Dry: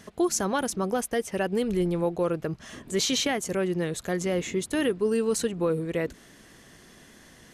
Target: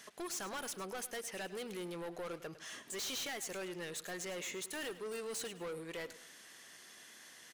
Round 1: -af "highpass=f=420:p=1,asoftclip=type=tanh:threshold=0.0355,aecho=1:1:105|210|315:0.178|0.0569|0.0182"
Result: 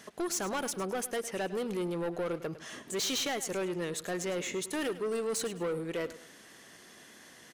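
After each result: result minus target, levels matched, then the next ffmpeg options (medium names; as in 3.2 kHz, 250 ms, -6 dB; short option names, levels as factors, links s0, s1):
saturation: distortion -6 dB; 2 kHz band -3.0 dB
-af "highpass=f=420:p=1,asoftclip=type=tanh:threshold=0.0112,aecho=1:1:105|210|315:0.178|0.0569|0.0182"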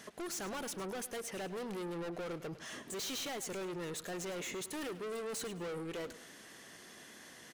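2 kHz band -2.0 dB
-af "highpass=f=1600:p=1,asoftclip=type=tanh:threshold=0.0112,aecho=1:1:105|210|315:0.178|0.0569|0.0182"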